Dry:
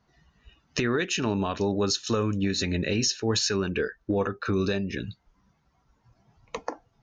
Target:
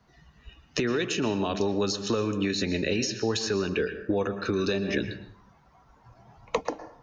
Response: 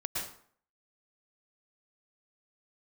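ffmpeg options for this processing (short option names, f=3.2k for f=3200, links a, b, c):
-filter_complex "[0:a]asplit=2[a][b];[1:a]atrim=start_sample=2205,lowpass=5.3k[c];[b][c]afir=irnorm=-1:irlink=0,volume=-13.5dB[d];[a][d]amix=inputs=2:normalize=0,acrossover=split=250|740|2400[e][f][g][h];[e]acompressor=threshold=-40dB:ratio=4[i];[f]acompressor=threshold=-30dB:ratio=4[j];[g]acompressor=threshold=-44dB:ratio=4[k];[h]acompressor=threshold=-36dB:ratio=4[l];[i][j][k][l]amix=inputs=4:normalize=0,asettb=1/sr,asplit=3[m][n][o];[m]atrim=end=4.884[p];[n]atrim=start=4.88:end=6.61,asetpts=PTS-STARTPTS,afade=t=in:d=0.004:c=qsin,afade=t=out:st=1.726:d=0.004:c=qsin,equalizer=f=850:w=0.66:g=8[q];[o]atrim=start=6.606[r];[p][q]acrossfade=d=0.004:c1=hsin:c2=qsin[s];[s][r]acrossfade=d=0.004:c1=qsin:c2=hsin,volume=4dB"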